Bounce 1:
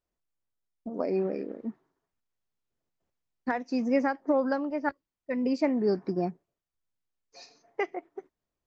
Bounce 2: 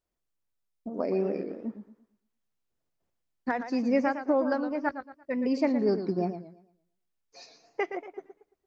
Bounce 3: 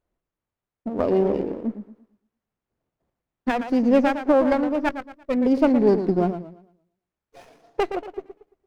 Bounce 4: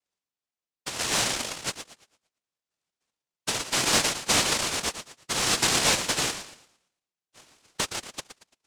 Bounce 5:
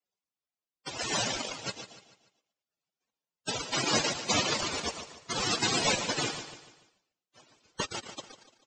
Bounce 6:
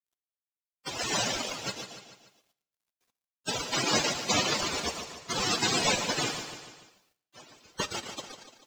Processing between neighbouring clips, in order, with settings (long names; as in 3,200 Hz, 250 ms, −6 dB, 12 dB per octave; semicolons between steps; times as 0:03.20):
feedback echo with a swinging delay time 114 ms, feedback 33%, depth 138 cents, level −10 dB
high-shelf EQ 2,500 Hz −10.5 dB; windowed peak hold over 9 samples; level +8.5 dB
cochlear-implant simulation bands 1; in parallel at −11 dB: decimation without filtering 20×; on the sum: level −6.5 dB
spectral peaks only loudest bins 64; on a send: repeating echo 146 ms, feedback 43%, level −12 dB
mu-law and A-law mismatch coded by mu; on a send at −14 dB: convolution reverb RT60 0.80 s, pre-delay 3 ms